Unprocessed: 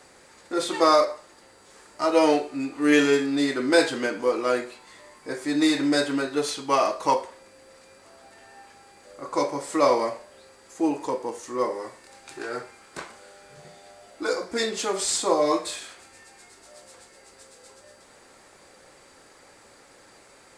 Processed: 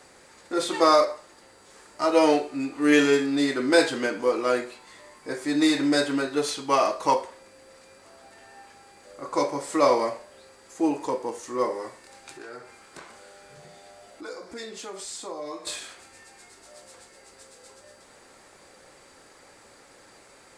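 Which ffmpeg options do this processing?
-filter_complex "[0:a]asettb=1/sr,asplit=3[s0][s1][s2];[s0]atrim=end=12.314[s3];[s1]atrim=start=12.31:end=15.67,asetpts=PTS-STARTPTS,afade=t=in:d=0.004:c=qsin,afade=t=out:st=3.356:d=0.004:c=qsin,acompressor=threshold=0.00631:ratio=2:attack=3.2:release=140:knee=1:detection=peak[s4];[s2]atrim=start=15.666[s5];[s3][s4]acrossfade=d=0.004:c1=hsin:c2=qsin[s6];[s6][s5]acrossfade=d=0.004:c1=qsin:c2=hsin"

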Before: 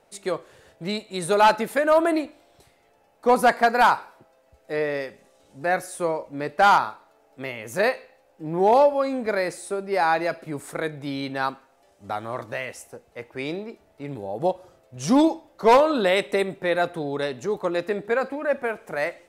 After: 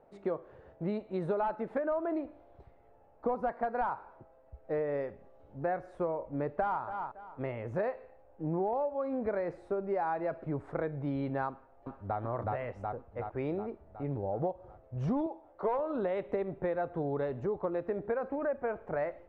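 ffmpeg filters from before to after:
-filter_complex "[0:a]asplit=2[s0][s1];[s1]afade=t=in:st=6.3:d=0.01,afade=t=out:st=6.83:d=0.01,aecho=0:1:280|560:0.149624|0.0299247[s2];[s0][s2]amix=inputs=2:normalize=0,asplit=2[s3][s4];[s4]afade=t=in:st=11.49:d=0.01,afade=t=out:st=12.18:d=0.01,aecho=0:1:370|740|1110|1480|1850|2220|2590|2960|3330:0.944061|0.566437|0.339862|0.203917|0.12235|0.0734102|0.0440461|0.0264277|0.0158566[s5];[s3][s5]amix=inputs=2:normalize=0,asettb=1/sr,asplit=3[s6][s7][s8];[s6]atrim=end=15.264[s9];[s7]atrim=start=15.26:end=15.79,asetpts=PTS-STARTPTS,afade=t=in:d=0.004:c=qsin,afade=t=out:st=0.526:d=0.004:c=qsin,bass=f=250:g=-13,treble=f=4000:g=-2[s10];[s8]atrim=start=15.786[s11];[s9][s10]acrossfade=d=0.004:c1=hsin:c2=qsin[s12];[s12][s11]acrossfade=d=0.004:c1=qsin:c2=hsin,lowpass=1000,asubboost=boost=4:cutoff=96,acompressor=threshold=0.0355:ratio=10"

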